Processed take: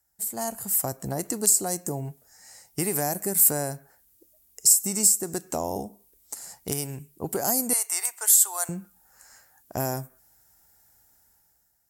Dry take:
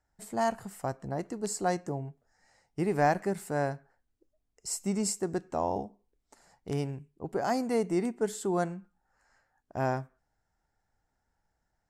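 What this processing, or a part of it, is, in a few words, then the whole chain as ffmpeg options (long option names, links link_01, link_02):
FM broadcast chain: -filter_complex "[0:a]asettb=1/sr,asplit=3[link_01][link_02][link_03];[link_01]atrim=end=7.734[link_04];[link_02]atrim=start=7.73:end=8.69,asetpts=PTS-STARTPTS,afade=type=in:duration=0.004:curve=qsin,afade=type=out:start_time=0.956:duration=0.004:curve=qsin,highpass=frequency=930:width=0.5412,highpass=frequency=930:width=1.3066[link_05];[link_03]atrim=start=8.686[link_06];[link_04][link_05]acrossfade=duration=0.004:curve1=hsin:curve2=qsin[link_07];[link_07][link_06]acrossfade=duration=0.004:curve1=qsin:curve2=hsin,highpass=43,dynaudnorm=framelen=180:gausssize=9:maxgain=12.5dB,acrossover=split=730|7200[link_08][link_09][link_10];[link_08]acompressor=threshold=-24dB:ratio=4[link_11];[link_09]acompressor=threshold=-36dB:ratio=4[link_12];[link_10]acompressor=threshold=-31dB:ratio=4[link_13];[link_11][link_12][link_13]amix=inputs=3:normalize=0,aemphasis=mode=production:type=50fm,alimiter=limit=-12dB:level=0:latency=1:release=476,asoftclip=type=hard:threshold=-14dB,lowpass=frequency=15000:width=0.5412,lowpass=frequency=15000:width=1.3066,aemphasis=mode=production:type=50fm,volume=-3dB"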